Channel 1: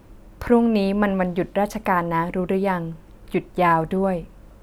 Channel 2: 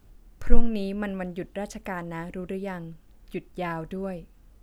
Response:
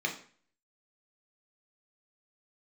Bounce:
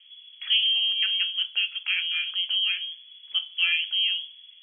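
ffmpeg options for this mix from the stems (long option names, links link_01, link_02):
-filter_complex "[0:a]lowpass=1100,flanger=delay=5.3:depth=5.7:regen=-60:speed=1.9:shape=sinusoidal,volume=-1dB,asplit=3[link_01][link_02][link_03];[link_02]volume=-16dB[link_04];[1:a]volume=-15dB[link_05];[link_03]apad=whole_len=204045[link_06];[link_05][link_06]sidechaincompress=threshold=-32dB:ratio=8:attack=16:release=509[link_07];[2:a]atrim=start_sample=2205[link_08];[link_04][link_08]afir=irnorm=-1:irlink=0[link_09];[link_01][link_07][link_09]amix=inputs=3:normalize=0,lowpass=frequency=2900:width_type=q:width=0.5098,lowpass=frequency=2900:width_type=q:width=0.6013,lowpass=frequency=2900:width_type=q:width=0.9,lowpass=frequency=2900:width_type=q:width=2.563,afreqshift=-3400"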